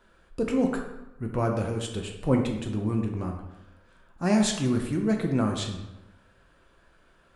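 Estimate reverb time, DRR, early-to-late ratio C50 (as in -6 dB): 1.0 s, 2.0 dB, 5.5 dB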